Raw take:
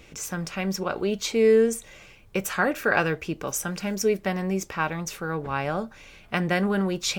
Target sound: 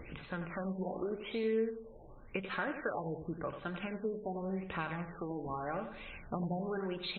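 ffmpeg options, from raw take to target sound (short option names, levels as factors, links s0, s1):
-af "aphaser=in_gain=1:out_gain=1:delay=4.7:decay=0.35:speed=0.63:type=triangular,acompressor=threshold=0.0126:ratio=3,bandreject=f=50:t=h:w=6,bandreject=f=100:t=h:w=6,bandreject=f=150:t=h:w=6,bandreject=f=200:t=h:w=6,aecho=1:1:90|180|270|360|450:0.355|0.16|0.0718|0.0323|0.0145,afftfilt=real='re*lt(b*sr/1024,960*pow(4300/960,0.5+0.5*sin(2*PI*0.88*pts/sr)))':imag='im*lt(b*sr/1024,960*pow(4300/960,0.5+0.5*sin(2*PI*0.88*pts/sr)))':win_size=1024:overlap=0.75"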